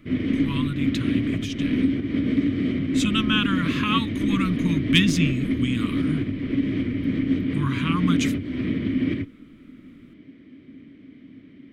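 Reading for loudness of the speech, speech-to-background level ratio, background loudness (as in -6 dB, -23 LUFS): -26.0 LUFS, -1.0 dB, -25.0 LUFS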